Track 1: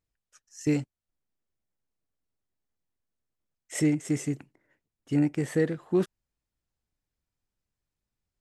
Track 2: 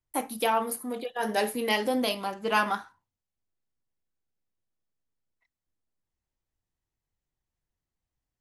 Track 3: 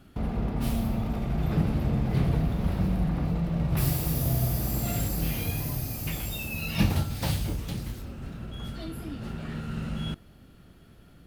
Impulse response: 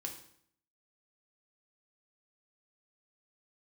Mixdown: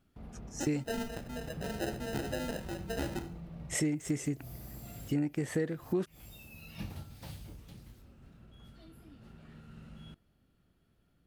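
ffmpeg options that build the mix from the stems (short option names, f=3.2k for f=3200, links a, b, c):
-filter_complex "[0:a]volume=2.5dB,asplit=2[a][b];[1:a]acrusher=samples=39:mix=1:aa=0.000001,adelay=450,volume=-11.5dB,asplit=2[c][d];[d]volume=-4.5dB[e];[2:a]volume=-18dB[f];[b]apad=whole_len=496667[g];[f][g]sidechaincompress=threshold=-39dB:ratio=8:attack=16:release=119[h];[3:a]atrim=start_sample=2205[i];[e][i]afir=irnorm=-1:irlink=0[j];[a][c][h][j]amix=inputs=4:normalize=0,acompressor=threshold=-31dB:ratio=3"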